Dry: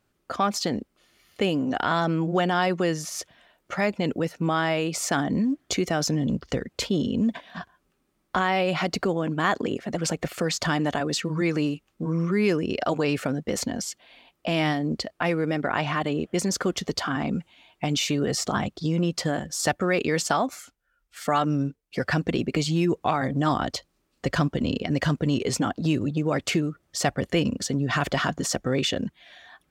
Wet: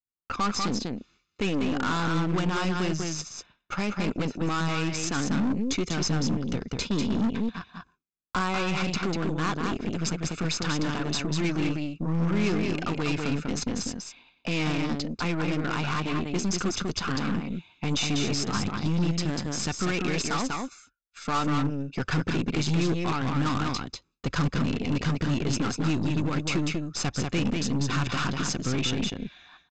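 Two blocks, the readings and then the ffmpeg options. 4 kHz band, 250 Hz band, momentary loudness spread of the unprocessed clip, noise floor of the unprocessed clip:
-1.5 dB, -1.5 dB, 7 LU, -72 dBFS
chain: -filter_complex "[0:a]aecho=1:1:0.8:0.65,asplit=2[a][b];[b]aecho=0:1:194:0.562[c];[a][c]amix=inputs=2:normalize=0,aeval=exprs='0.398*(cos(1*acos(clip(val(0)/0.398,-1,1)))-cos(1*PI/2))+0.0447*(cos(8*acos(clip(val(0)/0.398,-1,1)))-cos(8*PI/2))':c=same,aresample=16000,volume=17dB,asoftclip=hard,volume=-17dB,aresample=44100,agate=range=-33dB:threshold=-47dB:ratio=3:detection=peak,adynamicequalizer=threshold=0.0141:dfrequency=870:dqfactor=0.77:tfrequency=870:tqfactor=0.77:attack=5:release=100:ratio=0.375:range=1.5:mode=cutabove:tftype=bell,volume=-3dB"

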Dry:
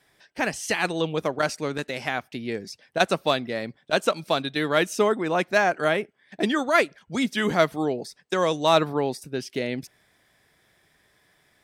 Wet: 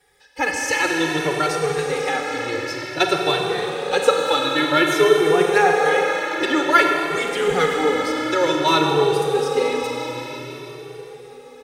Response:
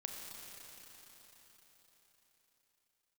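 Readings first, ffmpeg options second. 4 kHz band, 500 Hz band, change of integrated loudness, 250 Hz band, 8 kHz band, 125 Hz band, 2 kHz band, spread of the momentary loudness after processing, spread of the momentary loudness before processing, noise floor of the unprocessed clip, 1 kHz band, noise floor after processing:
+6.5 dB, +6.0 dB, +6.0 dB, +4.0 dB, +6.5 dB, +2.5 dB, +6.0 dB, 12 LU, 11 LU, -65 dBFS, +6.5 dB, -41 dBFS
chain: -filter_complex "[0:a]aecho=1:1:2.3:0.98[a];[1:a]atrim=start_sample=2205,asetrate=39690,aresample=44100[b];[a][b]afir=irnorm=-1:irlink=0,asplit=2[c][d];[d]adelay=2.1,afreqshift=0.53[e];[c][e]amix=inputs=2:normalize=1,volume=7dB"

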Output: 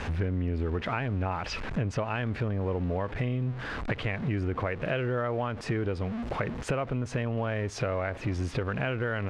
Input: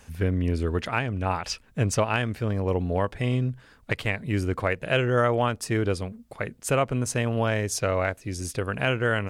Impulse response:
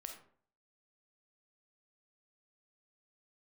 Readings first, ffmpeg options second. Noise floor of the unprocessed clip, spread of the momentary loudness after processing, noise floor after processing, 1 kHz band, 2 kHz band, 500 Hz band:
-55 dBFS, 3 LU, -40 dBFS, -5.5 dB, -5.5 dB, -5.5 dB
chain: -filter_complex "[0:a]aeval=exprs='val(0)+0.5*0.02*sgn(val(0))':c=same,lowpass=2.6k,asplit=2[a][b];[b]alimiter=limit=-21dB:level=0:latency=1,volume=-1.5dB[c];[a][c]amix=inputs=2:normalize=0,acompressor=threshold=-27dB:ratio=6"

